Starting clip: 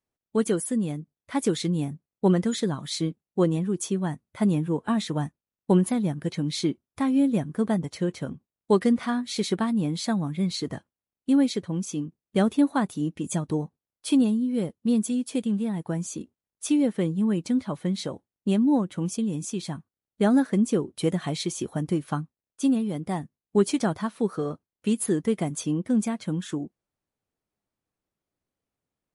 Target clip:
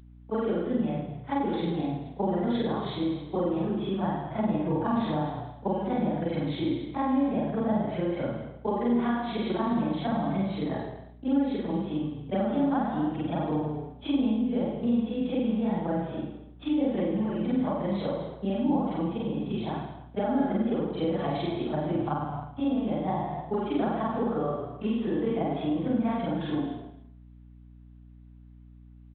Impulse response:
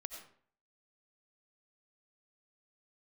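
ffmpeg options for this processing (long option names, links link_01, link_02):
-filter_complex "[0:a]afftfilt=real='re':imag='-im':win_size=4096:overlap=0.75,acompressor=threshold=-30dB:ratio=4,highpass=frequency=99:width=0.5412,highpass=frequency=99:width=1.3066,asplit=2[link_01][link_02];[link_02]asplit=4[link_03][link_04][link_05][link_06];[link_03]adelay=215,afreqshift=-31,volume=-13.5dB[link_07];[link_04]adelay=430,afreqshift=-62,volume=-22.1dB[link_08];[link_05]adelay=645,afreqshift=-93,volume=-30.8dB[link_09];[link_06]adelay=860,afreqshift=-124,volume=-39.4dB[link_10];[link_07][link_08][link_09][link_10]amix=inputs=4:normalize=0[link_11];[link_01][link_11]amix=inputs=2:normalize=0,agate=range=-33dB:threshold=-44dB:ratio=3:detection=peak,equalizer=frequency=740:width_type=o:width=1.1:gain=11,asplit=2[link_12][link_13];[link_13]aecho=0:1:50|105|165.5|232|305.3:0.631|0.398|0.251|0.158|0.1[link_14];[link_12][link_14]amix=inputs=2:normalize=0,aeval=exprs='val(0)+0.00282*(sin(2*PI*60*n/s)+sin(2*PI*2*60*n/s)/2+sin(2*PI*3*60*n/s)/3+sin(2*PI*4*60*n/s)/4+sin(2*PI*5*60*n/s)/5)':channel_layout=same,acrossover=split=330[link_15][link_16];[link_16]acompressor=threshold=-30dB:ratio=6[link_17];[link_15][link_17]amix=inputs=2:normalize=0,volume=2.5dB" -ar 8000 -c:a adpcm_g726 -b:a 40k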